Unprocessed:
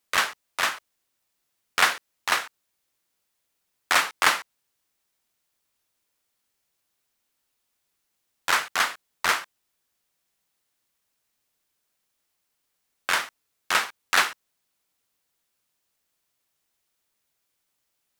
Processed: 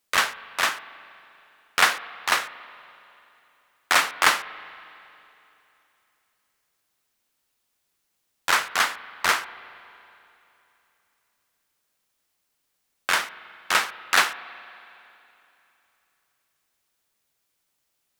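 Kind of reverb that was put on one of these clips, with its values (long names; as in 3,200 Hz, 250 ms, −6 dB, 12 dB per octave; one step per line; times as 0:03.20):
spring reverb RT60 3 s, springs 39/46 ms, chirp 65 ms, DRR 15.5 dB
level +1.5 dB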